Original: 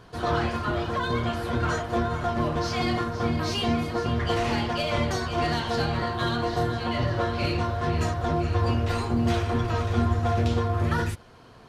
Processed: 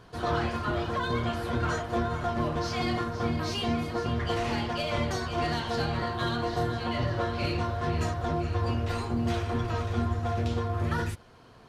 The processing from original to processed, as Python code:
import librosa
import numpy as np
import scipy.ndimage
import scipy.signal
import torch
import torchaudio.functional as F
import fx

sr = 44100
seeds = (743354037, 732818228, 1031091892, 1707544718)

y = fx.rider(x, sr, range_db=10, speed_s=0.5)
y = y * 10.0 ** (-3.5 / 20.0)